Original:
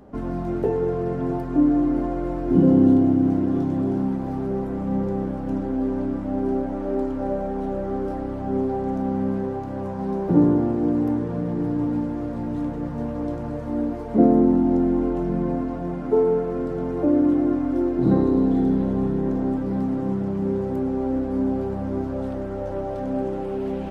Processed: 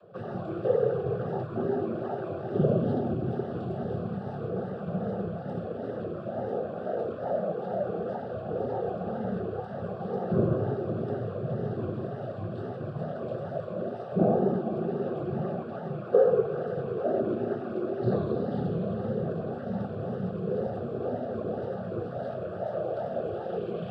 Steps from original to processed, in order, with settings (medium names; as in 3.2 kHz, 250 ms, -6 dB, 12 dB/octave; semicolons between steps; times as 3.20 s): noise-vocoded speech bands 16; static phaser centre 1.4 kHz, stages 8; wow and flutter 94 cents